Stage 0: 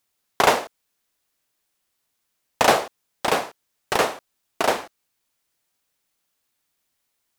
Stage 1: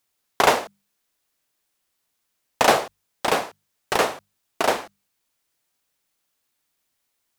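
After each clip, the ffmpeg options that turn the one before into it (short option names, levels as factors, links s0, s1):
-af "bandreject=f=50:t=h:w=6,bandreject=f=100:t=h:w=6,bandreject=f=150:t=h:w=6,bandreject=f=200:t=h:w=6"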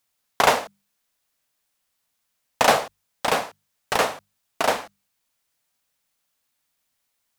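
-af "equalizer=f=360:t=o:w=0.34:g=-9.5"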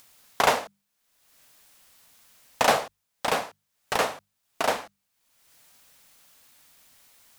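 -af "acompressor=mode=upward:threshold=0.0158:ratio=2.5,volume=0.668"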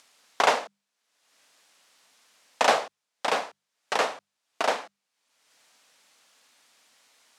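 -af "highpass=280,lowpass=7300"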